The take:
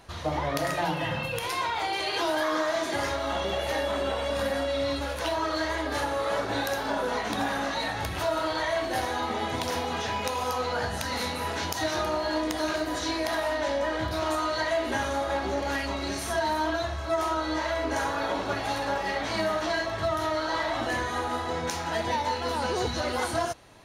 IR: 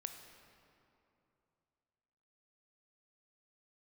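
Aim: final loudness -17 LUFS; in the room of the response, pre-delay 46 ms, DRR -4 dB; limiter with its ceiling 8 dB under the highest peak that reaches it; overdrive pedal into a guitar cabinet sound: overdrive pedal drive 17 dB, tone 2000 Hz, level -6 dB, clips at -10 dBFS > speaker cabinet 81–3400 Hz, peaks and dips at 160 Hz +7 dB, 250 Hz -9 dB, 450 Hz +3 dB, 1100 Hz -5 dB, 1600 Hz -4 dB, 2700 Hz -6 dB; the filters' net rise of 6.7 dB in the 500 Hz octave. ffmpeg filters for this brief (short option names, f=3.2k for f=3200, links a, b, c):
-filter_complex "[0:a]equalizer=f=500:t=o:g=8,alimiter=limit=-19.5dB:level=0:latency=1,asplit=2[a][b];[1:a]atrim=start_sample=2205,adelay=46[c];[b][c]afir=irnorm=-1:irlink=0,volume=7dB[d];[a][d]amix=inputs=2:normalize=0,asplit=2[e][f];[f]highpass=f=720:p=1,volume=17dB,asoftclip=type=tanh:threshold=-10dB[g];[e][g]amix=inputs=2:normalize=0,lowpass=f=2k:p=1,volume=-6dB,highpass=81,equalizer=f=160:t=q:w=4:g=7,equalizer=f=250:t=q:w=4:g=-9,equalizer=f=450:t=q:w=4:g=3,equalizer=f=1.1k:t=q:w=4:g=-5,equalizer=f=1.6k:t=q:w=4:g=-4,equalizer=f=2.7k:t=q:w=4:g=-6,lowpass=f=3.4k:w=0.5412,lowpass=f=3.4k:w=1.3066,volume=2.5dB"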